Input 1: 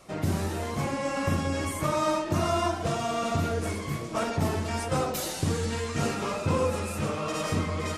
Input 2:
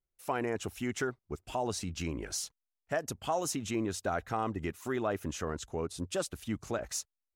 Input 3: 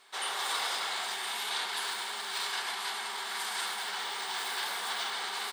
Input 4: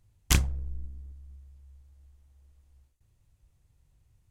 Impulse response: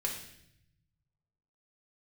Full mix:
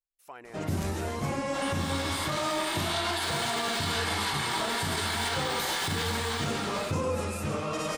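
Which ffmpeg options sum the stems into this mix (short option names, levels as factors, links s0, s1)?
-filter_complex "[0:a]adelay=450,volume=0.891[s0];[1:a]equalizer=f=150:w=0.39:g=-11.5,volume=0.335[s1];[2:a]flanger=delay=17:depth=4:speed=0.45,dynaudnorm=f=200:g=11:m=3.98,adelay=1400,volume=0.531,asplit=2[s2][s3];[s3]volume=0.596[s4];[3:a]adelay=500,volume=0.106[s5];[4:a]atrim=start_sample=2205[s6];[s4][s6]afir=irnorm=-1:irlink=0[s7];[s0][s1][s2][s5][s7]amix=inputs=5:normalize=0,alimiter=limit=0.0944:level=0:latency=1:release=55"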